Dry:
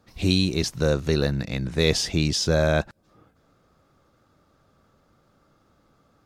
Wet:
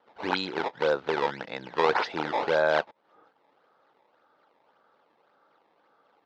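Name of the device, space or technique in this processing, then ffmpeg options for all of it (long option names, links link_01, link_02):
circuit-bent sampling toy: -af "acrusher=samples=17:mix=1:aa=0.000001:lfo=1:lforange=27.2:lforate=1.8,highpass=450,equalizer=frequency=470:width_type=q:width=4:gain=4,equalizer=frequency=870:width_type=q:width=4:gain=9,equalizer=frequency=1500:width_type=q:width=4:gain=5,equalizer=frequency=2500:width_type=q:width=4:gain=-3,lowpass=frequency=4100:width=0.5412,lowpass=frequency=4100:width=1.3066,volume=-2dB"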